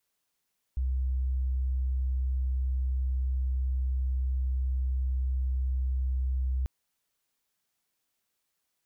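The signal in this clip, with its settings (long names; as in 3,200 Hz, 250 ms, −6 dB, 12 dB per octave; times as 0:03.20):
tone sine 64.5 Hz −25.5 dBFS 5.89 s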